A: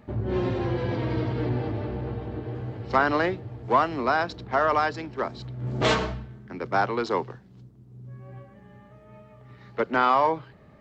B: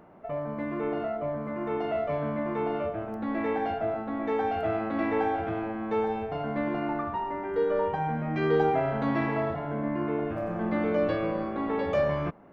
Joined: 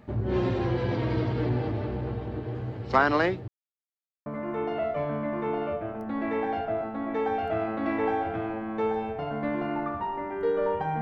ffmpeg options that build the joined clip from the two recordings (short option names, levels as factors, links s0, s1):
-filter_complex "[0:a]apad=whole_dur=11.01,atrim=end=11.01,asplit=2[s0][s1];[s0]atrim=end=3.48,asetpts=PTS-STARTPTS,afade=t=out:st=3.476:d=0.004:c=hsin[s2];[s1]atrim=start=3.48:end=4.26,asetpts=PTS-STARTPTS,volume=0[s3];[1:a]atrim=start=1.39:end=8.14,asetpts=PTS-STARTPTS,afade=t=in:d=0.004:c=hsin[s4];[s2][s3][s4]concat=n=3:v=0:a=1"